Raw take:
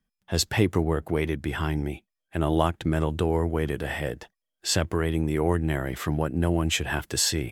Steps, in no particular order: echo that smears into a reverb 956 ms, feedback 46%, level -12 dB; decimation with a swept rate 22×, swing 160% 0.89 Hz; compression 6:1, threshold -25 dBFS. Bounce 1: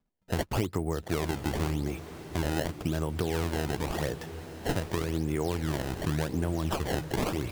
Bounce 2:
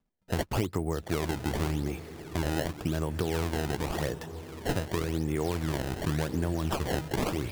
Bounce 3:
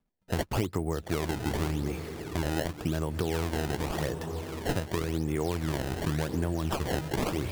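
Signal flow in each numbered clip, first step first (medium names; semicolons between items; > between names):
compression > decimation with a swept rate > echo that smears into a reverb; compression > echo that smears into a reverb > decimation with a swept rate; echo that smears into a reverb > compression > decimation with a swept rate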